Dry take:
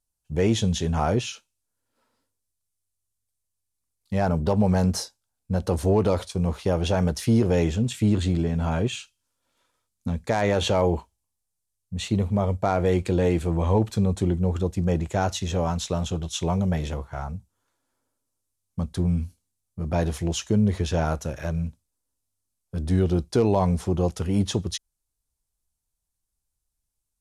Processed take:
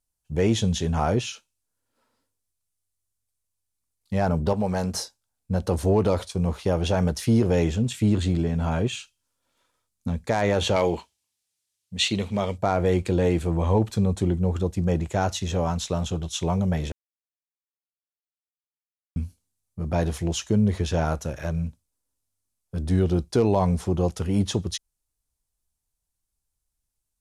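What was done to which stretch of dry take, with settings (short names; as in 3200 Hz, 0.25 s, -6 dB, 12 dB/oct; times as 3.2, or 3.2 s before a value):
4.53–4.94 low shelf 260 Hz -9 dB
10.76–12.58 weighting filter D
16.92–19.16 mute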